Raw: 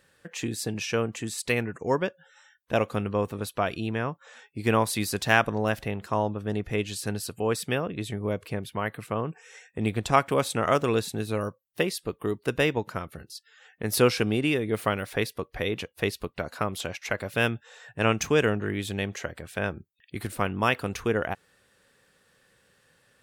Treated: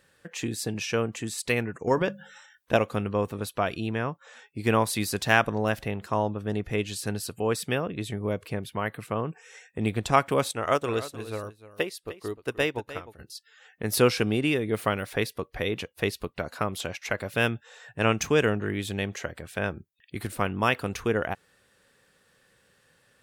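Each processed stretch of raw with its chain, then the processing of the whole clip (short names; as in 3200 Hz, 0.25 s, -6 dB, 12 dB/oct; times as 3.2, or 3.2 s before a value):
1.87–2.77 notches 50/100/150/200 Hz + transient shaper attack +4 dB, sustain +8 dB
10.51–13.19 bell 180 Hz -8 dB 0.79 oct + echo 0.303 s -10.5 dB + upward expander, over -44 dBFS
whole clip: dry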